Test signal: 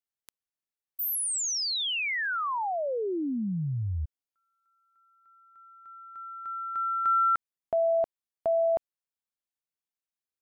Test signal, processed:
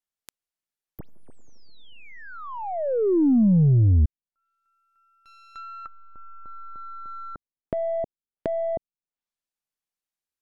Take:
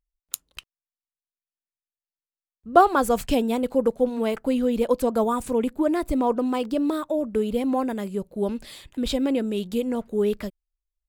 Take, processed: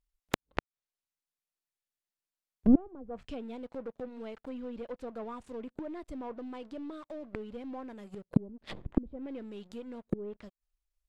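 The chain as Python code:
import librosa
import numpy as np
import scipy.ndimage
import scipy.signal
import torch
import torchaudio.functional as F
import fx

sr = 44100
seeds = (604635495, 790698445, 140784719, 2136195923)

y = np.where(x < 0.0, 10.0 ** (-3.0 / 20.0) * x, x)
y = fx.leveller(y, sr, passes=3)
y = fx.gate_flip(y, sr, shuts_db=-16.0, range_db=-35)
y = fx.env_lowpass_down(y, sr, base_hz=350.0, full_db=-37.0)
y = F.gain(torch.from_numpy(y), 8.0).numpy()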